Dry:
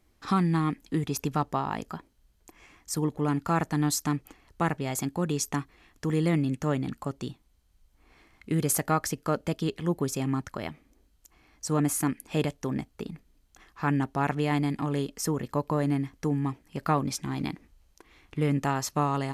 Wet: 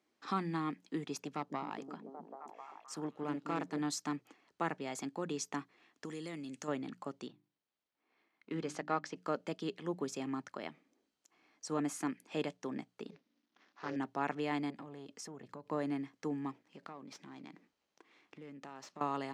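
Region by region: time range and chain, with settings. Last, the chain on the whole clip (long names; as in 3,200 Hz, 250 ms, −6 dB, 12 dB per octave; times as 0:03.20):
0:01.21–0:03.79: echo through a band-pass that steps 261 ms, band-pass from 220 Hz, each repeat 0.7 octaves, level −1.5 dB + tube saturation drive 18 dB, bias 0.55
0:06.05–0:06.68: parametric band 8,600 Hz +13.5 dB 2.1 octaves + downward compressor 3 to 1, threshold −32 dBFS
0:07.27–0:09.16: mu-law and A-law mismatch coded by A + low-pass filter 4,700 Hz + mains-hum notches 50/100/150/200/250/300/350 Hz
0:13.10–0:13.96: variable-slope delta modulation 32 kbit/s + amplitude modulation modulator 260 Hz, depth 90%
0:14.70–0:15.71: parametric band 110 Hz +13 dB 0.59 octaves + downward compressor 10 to 1, threshold −31 dBFS + saturating transformer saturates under 450 Hz
0:16.51–0:19.01: downward compressor 10 to 1, threshold −36 dBFS + windowed peak hold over 3 samples
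whole clip: high-pass filter 140 Hz 12 dB per octave; three-way crossover with the lows and the highs turned down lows −18 dB, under 180 Hz, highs −22 dB, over 7,800 Hz; mains-hum notches 60/120/180 Hz; level −7.5 dB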